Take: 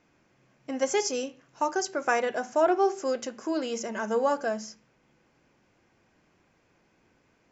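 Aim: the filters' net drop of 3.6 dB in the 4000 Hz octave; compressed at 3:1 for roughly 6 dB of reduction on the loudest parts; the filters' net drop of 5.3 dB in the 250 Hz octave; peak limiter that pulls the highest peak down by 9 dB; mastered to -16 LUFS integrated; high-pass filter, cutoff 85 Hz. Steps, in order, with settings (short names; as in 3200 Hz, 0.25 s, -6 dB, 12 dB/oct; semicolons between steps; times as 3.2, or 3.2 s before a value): HPF 85 Hz; bell 250 Hz -7.5 dB; bell 4000 Hz -5.5 dB; compressor 3:1, threshold -28 dBFS; gain +20 dB; limiter -5.5 dBFS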